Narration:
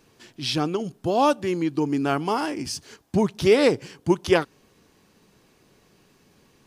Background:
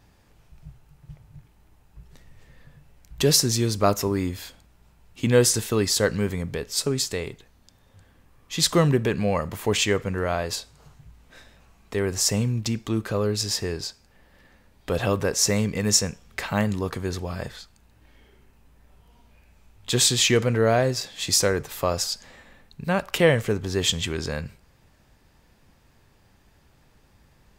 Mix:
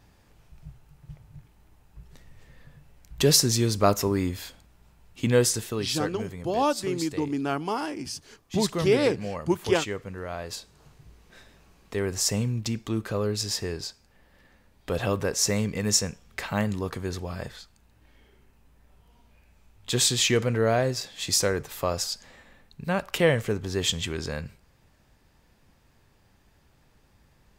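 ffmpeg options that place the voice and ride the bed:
-filter_complex "[0:a]adelay=5400,volume=-4.5dB[a];[1:a]volume=6.5dB,afade=t=out:st=5.06:d=0.86:silence=0.334965,afade=t=in:st=10.27:d=0.76:silence=0.446684[b];[a][b]amix=inputs=2:normalize=0"

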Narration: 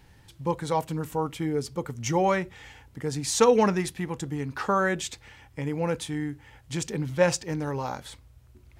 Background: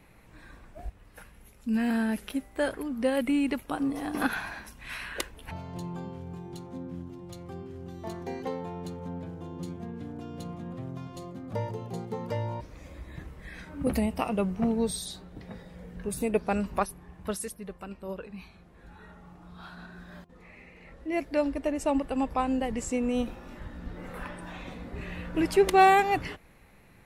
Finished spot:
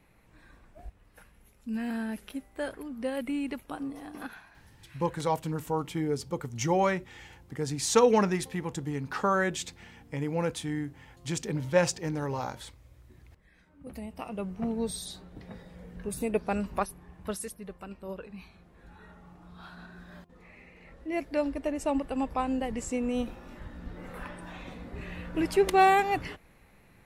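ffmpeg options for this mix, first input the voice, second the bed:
-filter_complex "[0:a]adelay=4550,volume=-2dB[a];[1:a]volume=10.5dB,afade=t=out:st=3.72:d=0.74:silence=0.237137,afade=t=in:st=13.83:d=1.27:silence=0.149624[b];[a][b]amix=inputs=2:normalize=0"

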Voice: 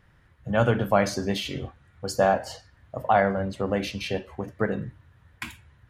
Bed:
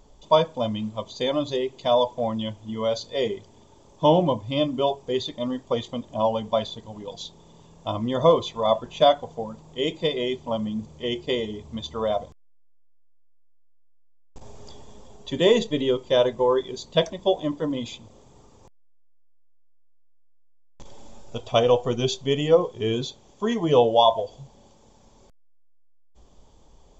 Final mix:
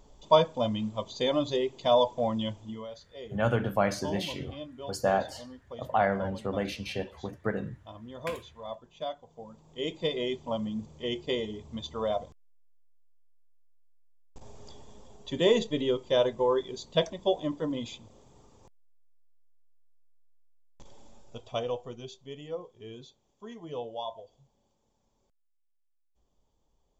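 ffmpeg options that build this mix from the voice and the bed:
-filter_complex "[0:a]adelay=2850,volume=-5dB[a];[1:a]volume=11dB,afade=t=out:st=2.58:d=0.29:silence=0.158489,afade=t=in:st=9.25:d=0.89:silence=0.211349,afade=t=out:st=20.31:d=1.76:silence=0.188365[b];[a][b]amix=inputs=2:normalize=0"

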